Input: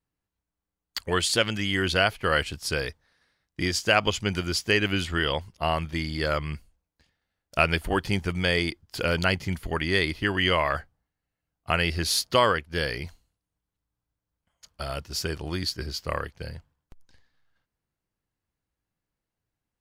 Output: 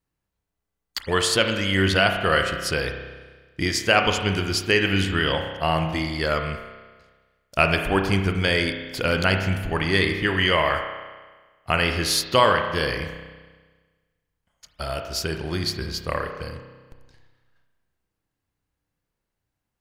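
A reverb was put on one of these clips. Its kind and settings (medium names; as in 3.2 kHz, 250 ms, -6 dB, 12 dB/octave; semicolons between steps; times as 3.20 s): spring tank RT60 1.4 s, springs 31 ms, chirp 50 ms, DRR 4.5 dB; trim +2.5 dB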